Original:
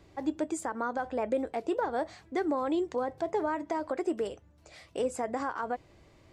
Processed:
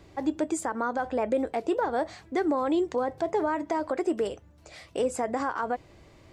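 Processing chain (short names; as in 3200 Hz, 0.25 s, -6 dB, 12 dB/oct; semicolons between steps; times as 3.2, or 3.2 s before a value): in parallel at -2.5 dB: limiter -25 dBFS, peak gain reduction 7 dB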